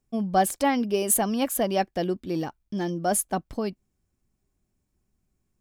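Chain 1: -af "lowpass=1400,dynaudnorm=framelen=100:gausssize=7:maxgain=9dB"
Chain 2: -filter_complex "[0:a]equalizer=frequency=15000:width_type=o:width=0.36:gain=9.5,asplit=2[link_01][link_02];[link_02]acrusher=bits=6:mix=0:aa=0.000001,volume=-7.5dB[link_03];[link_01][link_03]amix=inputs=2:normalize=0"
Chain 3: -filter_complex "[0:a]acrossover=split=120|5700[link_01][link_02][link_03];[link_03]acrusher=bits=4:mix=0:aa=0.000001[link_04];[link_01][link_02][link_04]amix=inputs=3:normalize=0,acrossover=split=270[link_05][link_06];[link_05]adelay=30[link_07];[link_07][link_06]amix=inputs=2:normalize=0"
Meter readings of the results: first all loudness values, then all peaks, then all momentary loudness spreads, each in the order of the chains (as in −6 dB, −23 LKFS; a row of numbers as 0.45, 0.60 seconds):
−19.5, −22.0, −26.5 LKFS; −4.5, −4.5, −8.5 dBFS; 6, 11, 11 LU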